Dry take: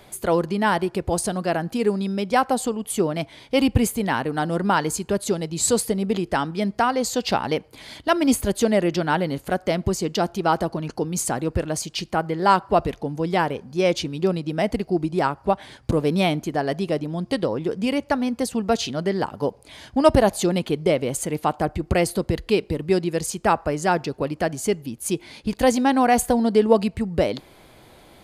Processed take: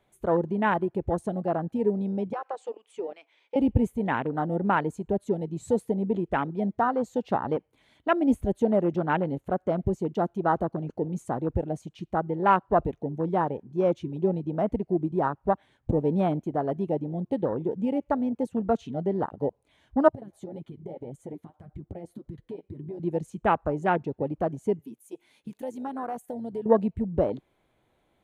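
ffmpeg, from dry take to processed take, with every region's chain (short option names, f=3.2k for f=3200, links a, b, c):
-filter_complex "[0:a]asettb=1/sr,asplit=3[a][b][c];[a]atrim=end=2.334[d];[b]atrim=start=2.33:end=3.56,asetpts=PTS-STARTPTS,afade=t=in:d=0.004:c=qsin,afade=t=out:st=1.226:d=0.004:c=qsin,highpass=f=420:w=0.5412,highpass=f=420:w=1.3066,equalizer=f=640:t=q:w=4:g=-6,equalizer=f=2.5k:t=q:w=4:g=8,equalizer=f=4.9k:t=q:w=4:g=5,lowpass=f=7.9k:w=0.5412,lowpass=f=7.9k:w=1.3066,acompressor=threshold=-23dB:ratio=8:attack=3.2:release=140:knee=1:detection=peak[e];[c]atrim=start=3.556[f];[d][e]acrossfade=d=0.004:c1=hsin:c2=qsin[g];[g][f]acrossfade=d=0.004:c1=qsin:c2=hsin,asettb=1/sr,asplit=3[h][i][j];[h]atrim=end=20.084[k];[i]atrim=start=20.08:end=23,asetpts=PTS-STARTPTS,afade=t=in:d=0.004:c=qsin,afade=t=out:st=2.916:d=0.004:c=qsin,flanger=delay=6:depth=6.7:regen=24:speed=1.8:shape=triangular,acompressor=threshold=-29dB:ratio=16:attack=3.2:release=140:knee=1:detection=peak,bandreject=f=2.7k:w=8.4[l];[j]atrim=start=22.996[m];[k][l]acrossfade=d=0.004:c1=hsin:c2=qsin[n];[n][m]acrossfade=d=0.004:c1=qsin:c2=hsin,asettb=1/sr,asplit=3[o][p][q];[o]atrim=end=24.794[r];[p]atrim=start=24.79:end=26.66,asetpts=PTS-STARTPTS,afade=t=in:d=0.004:c=qsin,afade=t=out:st=1.866:d=0.004:c=qsin,aemphasis=mode=production:type=bsi,acompressor=threshold=-30dB:ratio=2.5:attack=3.2:release=140:knee=1:detection=peak[s];[q]atrim=start=26.656[t];[r][s]acrossfade=d=0.004:c1=hsin:c2=qsin[u];[u][t]acrossfade=d=0.004:c1=qsin:c2=hsin,highshelf=f=7.5k:g=-10.5,afwtdn=0.0562,equalizer=f=4.8k:t=o:w=0.3:g=-13,volume=-3.5dB"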